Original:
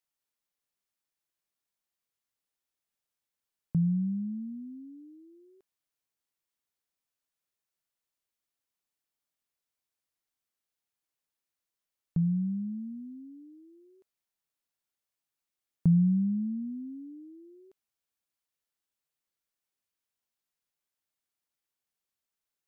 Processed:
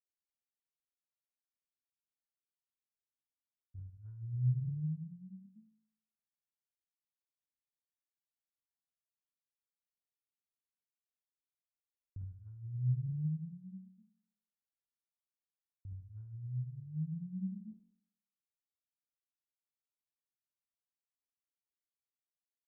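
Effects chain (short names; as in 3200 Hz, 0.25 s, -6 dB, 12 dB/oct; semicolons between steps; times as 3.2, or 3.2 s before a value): rattling part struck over -28 dBFS, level -39 dBFS; non-linear reverb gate 0.11 s rising, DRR -7 dB; gate -50 dBFS, range -23 dB; negative-ratio compressor -33 dBFS, ratio -1; low-pass opened by the level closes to 410 Hz, open at -13 dBFS; tremolo triangle 0.7 Hz, depth 65%; resonator 54 Hz, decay 0.67 s, harmonics all, mix 90%; pitch shift -9.5 st; gain +4 dB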